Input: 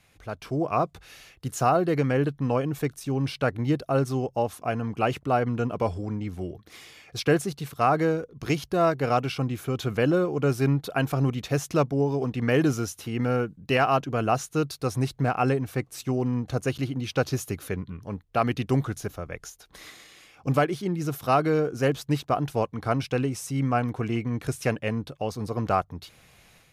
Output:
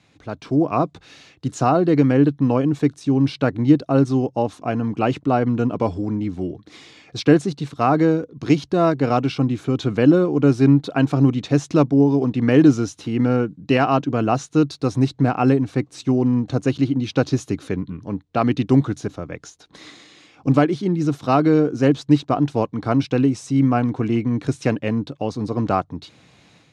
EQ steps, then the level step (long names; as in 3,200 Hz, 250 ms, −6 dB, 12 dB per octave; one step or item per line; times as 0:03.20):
loudspeaker in its box 130–7,900 Hz, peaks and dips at 290 Hz +8 dB, 940 Hz +3 dB, 3,900 Hz +5 dB
low-shelf EQ 330 Hz +9 dB
+1.0 dB